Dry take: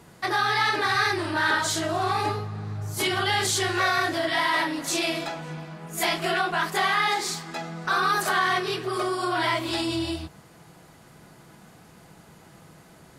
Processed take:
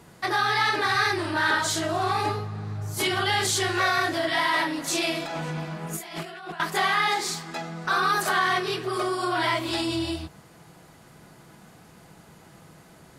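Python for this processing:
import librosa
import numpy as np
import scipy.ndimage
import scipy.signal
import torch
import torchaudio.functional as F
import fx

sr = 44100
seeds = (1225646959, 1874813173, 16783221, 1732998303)

y = fx.over_compress(x, sr, threshold_db=-35.0, ratio=-1.0, at=(5.25, 6.6))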